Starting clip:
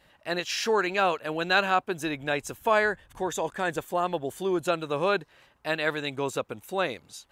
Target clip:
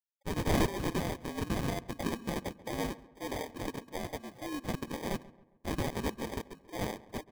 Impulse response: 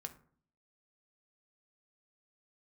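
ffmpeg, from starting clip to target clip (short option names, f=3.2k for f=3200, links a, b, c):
-filter_complex "[0:a]bandreject=f=2.2k:w=13,afftfilt=real='re*gte(hypot(re,im),0.01)':imag='im*gte(hypot(re,im),0.01)':win_size=1024:overlap=0.75,bandreject=f=50:t=h:w=6,bandreject=f=100:t=h:w=6,bandreject=f=150:t=h:w=6,bandreject=f=200:t=h:w=6,bandreject=f=250:t=h:w=6,bandreject=f=300:t=h:w=6,adynamicequalizer=threshold=0.00891:dfrequency=460:dqfactor=1.8:tfrequency=460:tqfactor=1.8:attack=5:release=100:ratio=0.375:range=2:mode=cutabove:tftype=bell,alimiter=limit=-18.5dB:level=0:latency=1:release=20,afreqshift=-54,crystalizer=i=5.5:c=0,asoftclip=type=tanh:threshold=-24dB,highpass=f=200:w=0.5412,highpass=f=200:w=1.3066,equalizer=f=230:t=q:w=4:g=4,equalizer=f=380:t=q:w=4:g=-8,equalizer=f=630:t=q:w=4:g=-4,equalizer=f=1.3k:t=q:w=4:g=-4,equalizer=f=2.9k:t=q:w=4:g=8,equalizer=f=5.6k:t=q:w=4:g=8,lowpass=f=6.1k:w=0.5412,lowpass=f=6.1k:w=1.3066,acrusher=samples=32:mix=1:aa=0.000001,asplit=2[a][b];[b]adelay=136,lowpass=f=2.1k:p=1,volume=-16dB,asplit=2[c][d];[d]adelay=136,lowpass=f=2.1k:p=1,volume=0.45,asplit=2[e][f];[f]adelay=136,lowpass=f=2.1k:p=1,volume=0.45,asplit=2[g][h];[h]adelay=136,lowpass=f=2.1k:p=1,volume=0.45[i];[c][e][g][i]amix=inputs=4:normalize=0[j];[a][j]amix=inputs=2:normalize=0,aeval=exprs='0.178*(cos(1*acos(clip(val(0)/0.178,-1,1)))-cos(1*PI/2))+0.00891*(cos(7*acos(clip(val(0)/0.178,-1,1)))-cos(7*PI/2))':c=same,volume=-4dB"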